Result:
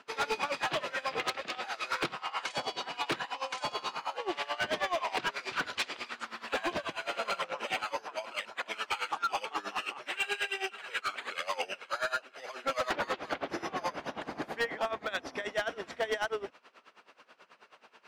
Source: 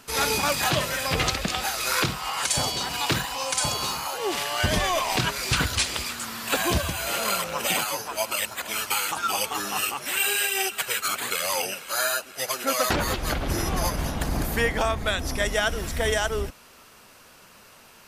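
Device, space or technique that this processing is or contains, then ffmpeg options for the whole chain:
helicopter radio: -af "highpass=350,lowpass=3k,aeval=exprs='val(0)*pow(10,-19*(0.5-0.5*cos(2*PI*9.3*n/s))/20)':c=same,asoftclip=type=hard:threshold=-25dB"

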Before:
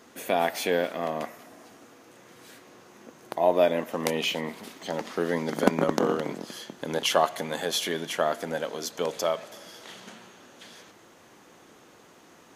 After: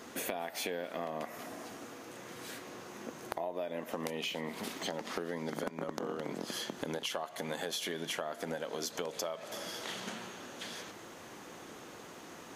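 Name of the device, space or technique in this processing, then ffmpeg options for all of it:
serial compression, peaks first: -af "acompressor=threshold=-34dB:ratio=6,acompressor=threshold=-40dB:ratio=2.5,volume=4.5dB"

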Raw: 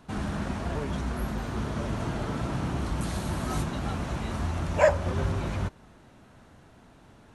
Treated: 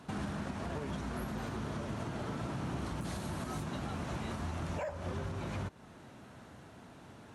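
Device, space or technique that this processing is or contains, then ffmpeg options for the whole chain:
podcast mastering chain: -af "highpass=82,deesser=0.9,acompressor=threshold=-33dB:ratio=2.5,alimiter=level_in=6.5dB:limit=-24dB:level=0:latency=1:release=382,volume=-6.5dB,volume=2dB" -ar 44100 -c:a libmp3lame -b:a 112k

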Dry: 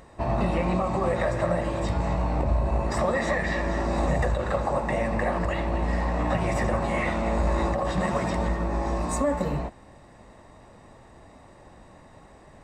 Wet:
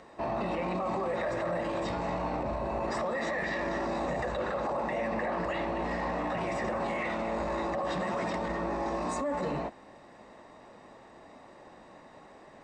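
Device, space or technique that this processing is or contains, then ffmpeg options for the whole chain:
DJ mixer with the lows and highs turned down: -filter_complex "[0:a]asettb=1/sr,asplit=3[a][b][c];[a]atrim=end=4.344[d];[b]atrim=start=4.34:end=5.45,asetpts=PTS-STARTPTS,afade=t=in:d=0.004:c=qsin,afade=t=out:st=1.106:d=0.004:c=qsin,lowpass=8.3k[e];[c]atrim=start=5.446[f];[d][e]acrossfade=d=0.004:c1=hsin:c2=qsin[g];[g][f]acrossfade=d=0.004:c1=qsin:c2=hsin,acrossover=split=190 7200:gain=0.158 1 0.1[h][i][j];[h][i][j]amix=inputs=3:normalize=0,alimiter=level_in=0.5dB:limit=-24dB:level=0:latency=1:release=13,volume=-0.5dB"

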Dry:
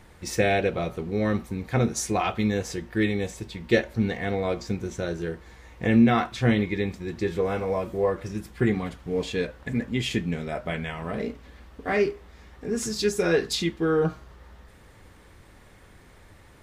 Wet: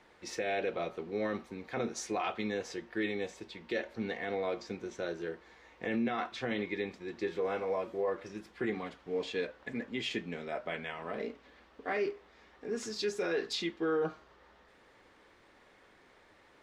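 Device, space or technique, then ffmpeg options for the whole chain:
DJ mixer with the lows and highs turned down: -filter_complex "[0:a]acrossover=split=250 6000:gain=0.126 1 0.158[a][b][c];[a][b][c]amix=inputs=3:normalize=0,alimiter=limit=-19dB:level=0:latency=1:release=20,volume=-5.5dB"

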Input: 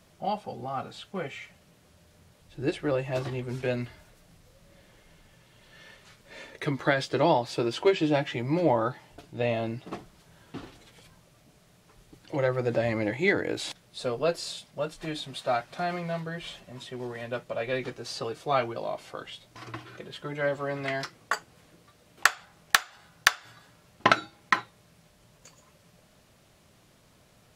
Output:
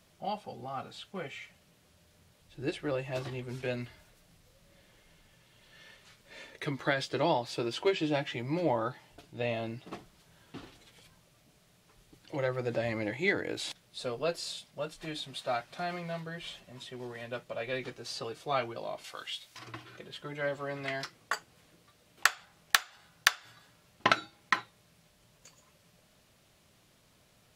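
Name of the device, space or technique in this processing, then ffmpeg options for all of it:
presence and air boost: -filter_complex "[0:a]equalizer=f=3.3k:t=o:w=1.8:g=3.5,highshelf=f=9.8k:g=5.5,asettb=1/sr,asplit=3[a][b][c];[a]atrim=end=19.044[d];[b]atrim=start=19.04:end=19.59,asetpts=PTS-STARTPTS,afade=t=in:d=0.004:c=qsin,afade=t=out:st=0.546:d=0.004:c=qsin,tiltshelf=f=910:g=-8[e];[c]atrim=start=19.586[f];[d][e]acrossfade=d=0.004:c1=hsin:c2=qsin[g];[g][f]acrossfade=d=0.004:c1=qsin:c2=hsin,volume=-6dB"

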